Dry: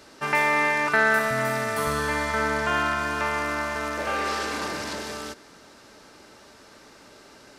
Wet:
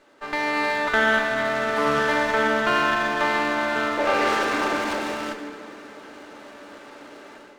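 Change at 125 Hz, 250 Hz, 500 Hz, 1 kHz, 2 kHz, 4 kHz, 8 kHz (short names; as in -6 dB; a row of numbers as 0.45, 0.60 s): -4.5, +4.5, +4.0, +2.5, +1.5, +4.0, -3.0 dB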